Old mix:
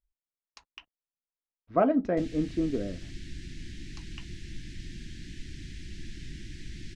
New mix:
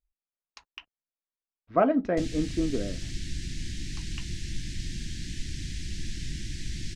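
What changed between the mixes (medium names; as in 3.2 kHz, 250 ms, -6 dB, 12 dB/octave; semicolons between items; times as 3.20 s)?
background: add tone controls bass +7 dB, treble +12 dB; master: add peaking EQ 2.1 kHz +4 dB 2.6 oct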